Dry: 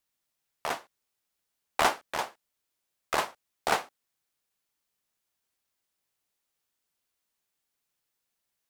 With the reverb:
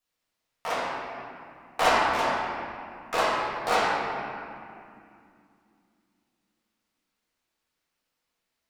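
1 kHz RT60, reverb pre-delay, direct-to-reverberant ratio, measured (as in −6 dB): 2.4 s, 4 ms, −11.0 dB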